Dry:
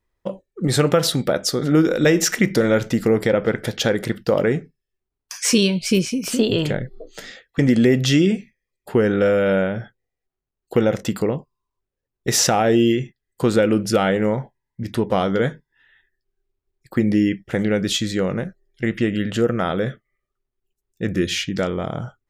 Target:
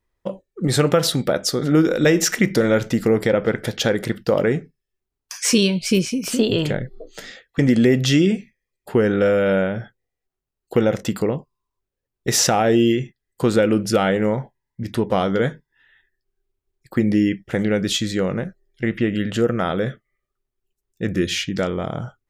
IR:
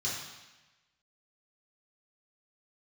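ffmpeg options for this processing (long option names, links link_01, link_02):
-filter_complex "[0:a]asettb=1/sr,asplit=3[link_01][link_02][link_03];[link_01]atrim=end=18.294[link_04];[link_02]atrim=start=18.29:end=19.15,asetpts=PTS-STARTPTS,afade=type=in:duration=0.004:curve=qsin,afade=type=out:start_time=0.856:duration=0.004:curve=qsin,acrossover=split=4100[link_05][link_06];[link_06]acompressor=threshold=-57dB:ratio=4:attack=1:release=60[link_07];[link_05][link_07]amix=inputs=2:normalize=0[link_08];[link_03]atrim=start=19.146[link_09];[link_04][link_08]acrossfade=duration=0.004:curve1=hsin:curve2=qsin[link_10];[link_10][link_09]acrossfade=duration=0.004:curve1=qsin:curve2=hsin"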